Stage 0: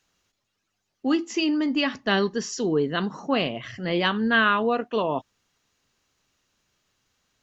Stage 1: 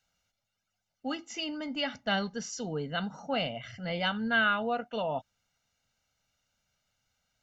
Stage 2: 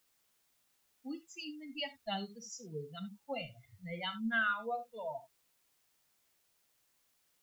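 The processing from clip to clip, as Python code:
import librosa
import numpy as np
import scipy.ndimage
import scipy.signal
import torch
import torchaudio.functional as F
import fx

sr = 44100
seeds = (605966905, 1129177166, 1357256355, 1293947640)

y1 = x + 0.79 * np.pad(x, (int(1.4 * sr / 1000.0), 0))[:len(x)]
y1 = y1 * 10.0 ** (-8.5 / 20.0)
y2 = fx.bin_expand(y1, sr, power=3.0)
y2 = fx.rev_gated(y2, sr, seeds[0], gate_ms=100, shape='flat', drr_db=9.5)
y2 = fx.quant_dither(y2, sr, seeds[1], bits=12, dither='triangular')
y2 = y2 * 10.0 ** (-3.0 / 20.0)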